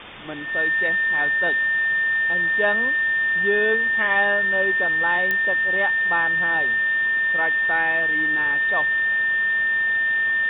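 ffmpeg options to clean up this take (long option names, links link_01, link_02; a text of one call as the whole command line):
ffmpeg -i in.wav -af "adeclick=threshold=4,bandreject=frequency=1800:width=30,afftdn=noise_reduction=30:noise_floor=-21" out.wav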